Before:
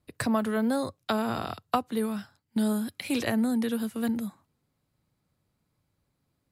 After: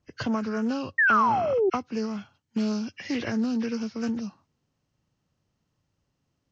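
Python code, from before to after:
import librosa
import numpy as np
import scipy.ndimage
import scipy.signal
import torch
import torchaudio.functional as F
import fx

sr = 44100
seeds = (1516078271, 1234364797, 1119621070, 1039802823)

y = fx.freq_compress(x, sr, knee_hz=1300.0, ratio=1.5)
y = fx.spec_paint(y, sr, seeds[0], shape='fall', start_s=0.98, length_s=0.72, low_hz=360.0, high_hz=1900.0, level_db=-19.0)
y = fx.dynamic_eq(y, sr, hz=650.0, q=1.5, threshold_db=-36.0, ratio=4.0, max_db=-7)
y = fx.doppler_dist(y, sr, depth_ms=0.13)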